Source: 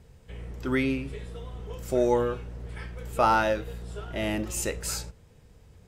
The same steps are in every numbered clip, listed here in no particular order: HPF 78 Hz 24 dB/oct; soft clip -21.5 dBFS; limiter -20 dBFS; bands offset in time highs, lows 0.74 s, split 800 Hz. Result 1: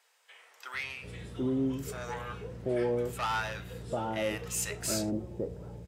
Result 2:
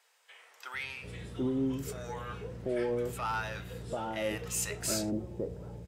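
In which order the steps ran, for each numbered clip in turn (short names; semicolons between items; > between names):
soft clip > HPF > limiter > bands offset in time; HPF > limiter > soft clip > bands offset in time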